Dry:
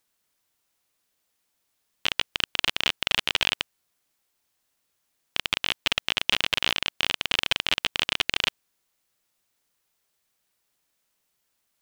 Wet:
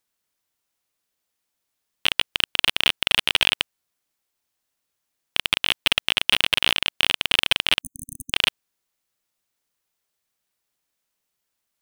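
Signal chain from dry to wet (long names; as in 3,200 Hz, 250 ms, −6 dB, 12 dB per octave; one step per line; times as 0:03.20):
leveller curve on the samples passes 2
0:07.81–0:08.33: linear-phase brick-wall band-stop 270–6,200 Hz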